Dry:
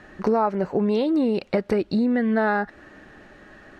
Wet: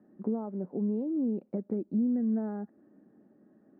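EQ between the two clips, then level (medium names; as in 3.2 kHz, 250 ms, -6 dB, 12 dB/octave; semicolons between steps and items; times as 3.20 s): ladder band-pass 260 Hz, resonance 45%; distance through air 94 m; 0.0 dB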